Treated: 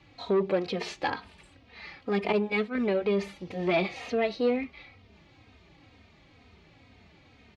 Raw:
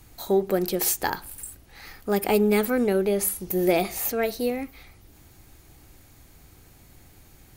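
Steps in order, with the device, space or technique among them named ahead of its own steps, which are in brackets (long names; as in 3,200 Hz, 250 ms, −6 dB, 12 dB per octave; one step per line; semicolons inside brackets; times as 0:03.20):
0:02.32–0:02.75: downward expander −16 dBFS
barber-pole flanger into a guitar amplifier (barber-pole flanger 3 ms −2.1 Hz; soft clipping −21 dBFS, distortion −13 dB; loudspeaker in its box 98–4,000 Hz, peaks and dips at 130 Hz −9 dB, 340 Hz −6 dB, 810 Hz −3 dB, 1,500 Hz −6 dB, 2,400 Hz +3 dB)
level +4.5 dB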